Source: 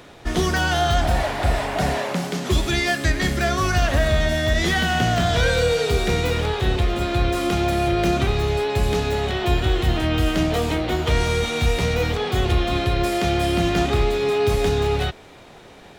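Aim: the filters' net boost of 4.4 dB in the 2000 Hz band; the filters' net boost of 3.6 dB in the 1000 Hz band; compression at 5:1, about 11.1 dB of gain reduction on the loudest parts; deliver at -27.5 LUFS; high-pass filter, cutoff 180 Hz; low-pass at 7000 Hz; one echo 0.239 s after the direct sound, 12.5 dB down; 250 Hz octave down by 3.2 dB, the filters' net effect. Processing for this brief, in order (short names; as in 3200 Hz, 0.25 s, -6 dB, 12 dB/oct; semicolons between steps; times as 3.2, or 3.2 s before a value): HPF 180 Hz; LPF 7000 Hz; bell 250 Hz -4 dB; bell 1000 Hz +5 dB; bell 2000 Hz +4 dB; compressor 5:1, threshold -28 dBFS; echo 0.239 s -12.5 dB; gain +2 dB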